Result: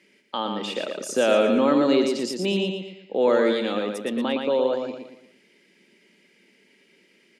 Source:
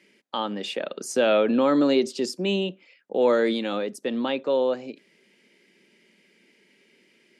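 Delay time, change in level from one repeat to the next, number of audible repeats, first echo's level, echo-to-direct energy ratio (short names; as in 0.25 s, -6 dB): 0.116 s, -8.0 dB, 4, -5.0 dB, -4.0 dB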